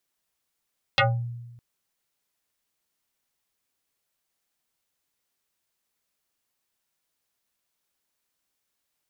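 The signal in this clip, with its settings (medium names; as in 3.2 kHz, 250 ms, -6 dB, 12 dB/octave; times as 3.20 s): FM tone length 0.61 s, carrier 119 Hz, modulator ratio 5.66, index 6.4, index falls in 0.28 s exponential, decay 1.16 s, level -15 dB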